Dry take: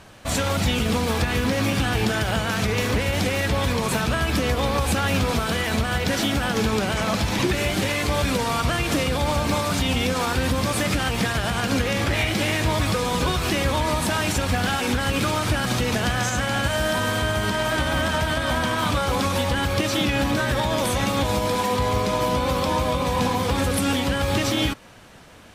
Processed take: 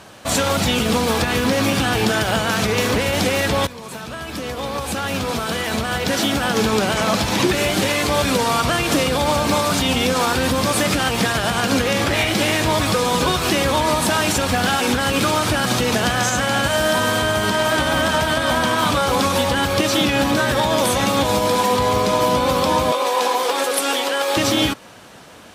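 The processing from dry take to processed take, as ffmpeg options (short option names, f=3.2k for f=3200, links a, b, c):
-filter_complex "[0:a]asettb=1/sr,asplit=3[a][b][c];[a]atrim=end=22.924[d];[b]atrim=start=22.92:end=24.37,asetpts=PTS-STARTPTS,afade=t=in:d=0.004:c=qsin,afade=t=out:st=1.446:d=0.004:c=qsin,highpass=f=370:w=0.5412,highpass=f=370:w=1.3066[e];[c]atrim=start=24.366[f];[d][e]acrossfade=d=0.004:c1=hsin:c2=qsin[g];[g][f]acrossfade=d=0.004:c1=qsin:c2=hsin,asplit=2[h][i];[h]atrim=end=3.67,asetpts=PTS-STARTPTS,afade=t=out:st=3.666:d=0.004:c=hsin:silence=0.125893[j];[i]atrim=start=3.67,asetpts=PTS-STARTPTS,afade=t=in:d=3.09:silence=0.125893[k];[j][k]concat=n=2:v=0:a=1,highpass=f=200:p=1,equalizer=f=2.1k:w=1.7:g=-3,acontrast=25,volume=1.5dB"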